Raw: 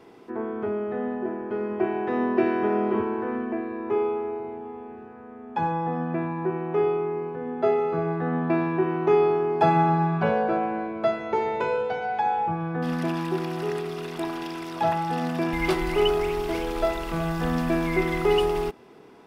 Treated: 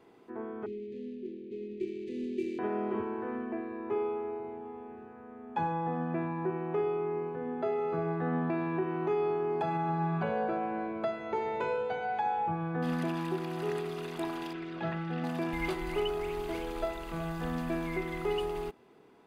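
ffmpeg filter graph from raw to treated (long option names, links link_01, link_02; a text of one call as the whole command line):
ffmpeg -i in.wav -filter_complex "[0:a]asettb=1/sr,asplit=3[link_01][link_02][link_03];[link_01]atrim=end=0.664[link_04];[link_02]atrim=start=0.66:end=2.59,asetpts=PTS-STARTPTS,afade=type=in:duration=0.004:curve=qsin,afade=type=out:start_time=1.926:duration=0.004:curve=qsin,lowshelf=frequency=98:gain=-11.5,adynamicsmooth=sensitivity=6:basefreq=1200,asuperstop=centerf=980:order=12:qfactor=0.55[link_05];[link_03]atrim=start=2.586[link_06];[link_04][link_05]acrossfade=duration=0.004:curve1=hsin:curve2=qsin[link_07];[link_07][link_06]acrossfade=duration=0.004:curve1=qsin:curve2=hsin,asettb=1/sr,asplit=3[link_08][link_09][link_10];[link_08]atrim=end=14.534[link_11];[link_09]atrim=start=14.53:end=15.24,asetpts=PTS-STARTPTS,afade=type=in:duration=0.004:curve=qsin,afade=type=out:start_time=0.706:duration=0.004:curve=qsin,lowpass=3000,equalizer=frequency=910:width_type=o:width=0.48:gain=-10.5,aecho=1:1:5.4:0.48,atrim=end_sample=31311[link_12];[link_10]atrim=start=15.236[link_13];[link_11][link_12]acrossfade=duration=0.004:curve1=hsin:curve2=qsin[link_14];[link_14][link_13]acrossfade=duration=0.004:curve1=qsin:curve2=hsin,bandreject=frequency=5400:width=7.2,dynaudnorm=framelen=290:gausssize=31:maxgain=6dB,alimiter=limit=-13.5dB:level=0:latency=1:release=352,volume=-9dB" out.wav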